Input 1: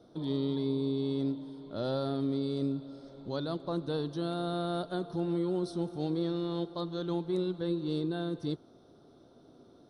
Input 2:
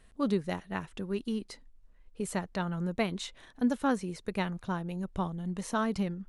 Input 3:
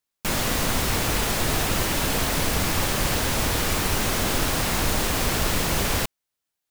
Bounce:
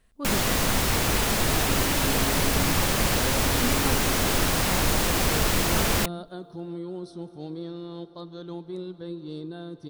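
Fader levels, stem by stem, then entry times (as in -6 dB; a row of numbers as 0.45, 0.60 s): -4.0, -4.5, 0.0 dB; 1.40, 0.00, 0.00 s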